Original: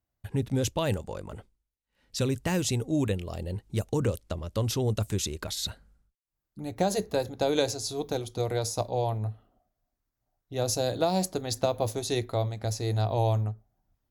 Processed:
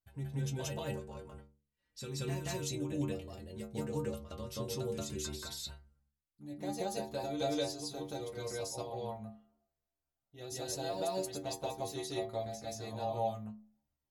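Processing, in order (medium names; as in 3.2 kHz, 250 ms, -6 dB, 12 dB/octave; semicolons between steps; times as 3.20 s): inharmonic resonator 69 Hz, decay 0.5 s, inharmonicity 0.008; reverse echo 179 ms -4 dB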